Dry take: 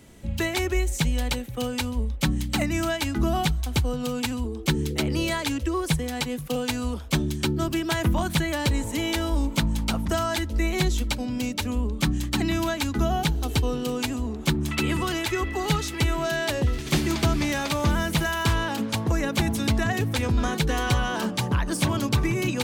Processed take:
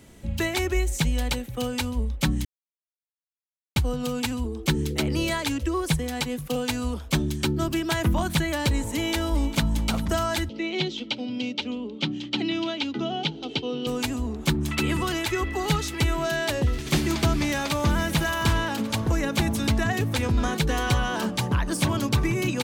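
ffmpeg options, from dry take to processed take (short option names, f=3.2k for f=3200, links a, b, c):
-filter_complex "[0:a]asplit=2[a][b];[b]afade=t=in:st=8.94:d=0.01,afade=t=out:st=9.63:d=0.01,aecho=0:1:400|800|1200|1600|2000:0.188365|0.103601|0.0569804|0.0313392|0.0172366[c];[a][c]amix=inputs=2:normalize=0,asettb=1/sr,asplit=3[d][e][f];[d]atrim=end=10.494[g];[e]atrim=start=10.49:end=13.87,asetpts=PTS-STARTPTS,afade=t=in:d=0.004:c=qsin,afade=t=out:st=3.376:d=0.004:c=qsin,highpass=f=160:w=0.5412,highpass=f=160:w=1.3066,equalizer=f=190:t=q:w=4:g=-7,equalizer=f=700:t=q:w=4:g=-4,equalizer=f=1.1k:t=q:w=4:g=-10,equalizer=f=1.7k:t=q:w=4:g=-10,equalizer=f=3.1k:t=q:w=4:g=7,lowpass=f=4.7k:w=0.5412,lowpass=f=4.7k:w=1.3066[h];[f]atrim=start=13.866[i];[g][h]acrossfade=d=0.004:c1=hsin:c2=qsin[j];[j][i]acrossfade=d=0.004:c1=qsin:c2=hsin,asplit=2[k][l];[l]afade=t=in:st=17.31:d=0.01,afade=t=out:st=18.03:d=0.01,aecho=0:1:570|1140|1710|2280|2850|3420|3990|4560|5130:0.211349|0.147944|0.103561|0.0724927|0.0507449|0.0355214|0.024865|0.0174055|0.0121838[m];[k][m]amix=inputs=2:normalize=0,asplit=3[n][o][p];[n]atrim=end=2.45,asetpts=PTS-STARTPTS,afade=t=out:st=2.446:d=0.004:c=hsin[q];[o]atrim=start=2.45:end=3.76,asetpts=PTS-STARTPTS,volume=0[r];[p]atrim=start=3.76,asetpts=PTS-STARTPTS,afade=t=in:d=0.004:c=hsin[s];[q][r][s]concat=n=3:v=0:a=1"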